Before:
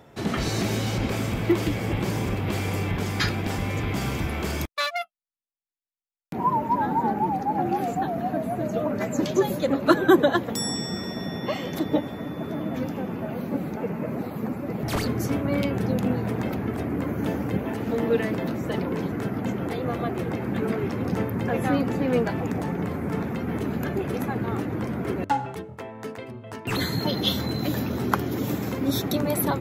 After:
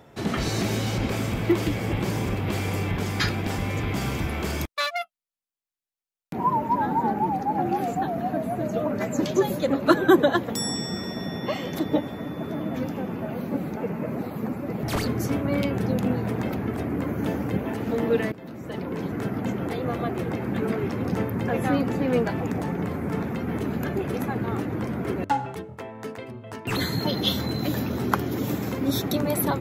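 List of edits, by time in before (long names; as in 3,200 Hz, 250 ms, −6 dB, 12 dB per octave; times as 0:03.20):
0:18.32–0:19.23: fade in, from −18 dB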